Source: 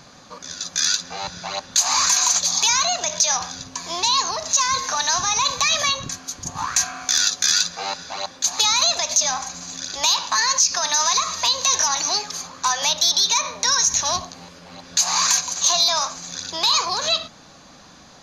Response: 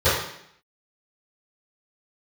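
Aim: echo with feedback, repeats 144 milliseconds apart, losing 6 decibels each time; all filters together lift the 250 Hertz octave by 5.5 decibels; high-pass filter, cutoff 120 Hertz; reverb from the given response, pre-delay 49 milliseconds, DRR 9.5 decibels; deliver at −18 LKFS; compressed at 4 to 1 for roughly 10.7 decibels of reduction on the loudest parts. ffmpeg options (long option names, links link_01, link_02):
-filter_complex "[0:a]highpass=120,equalizer=frequency=250:width_type=o:gain=7.5,acompressor=threshold=-27dB:ratio=4,aecho=1:1:144|288|432|576|720|864:0.501|0.251|0.125|0.0626|0.0313|0.0157,asplit=2[link_01][link_02];[1:a]atrim=start_sample=2205,adelay=49[link_03];[link_02][link_03]afir=irnorm=-1:irlink=0,volume=-30dB[link_04];[link_01][link_04]amix=inputs=2:normalize=0,volume=8.5dB"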